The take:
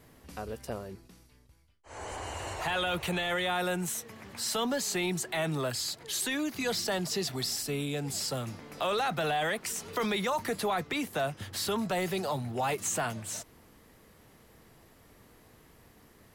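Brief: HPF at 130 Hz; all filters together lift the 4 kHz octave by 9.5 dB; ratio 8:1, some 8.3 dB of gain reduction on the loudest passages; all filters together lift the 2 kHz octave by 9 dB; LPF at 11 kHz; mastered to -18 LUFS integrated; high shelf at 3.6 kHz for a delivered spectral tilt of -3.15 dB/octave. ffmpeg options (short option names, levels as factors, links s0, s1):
-af "highpass=130,lowpass=11000,equalizer=f=2000:t=o:g=8,highshelf=f=3600:g=7.5,equalizer=f=4000:t=o:g=4.5,acompressor=threshold=0.0355:ratio=8,volume=5.01"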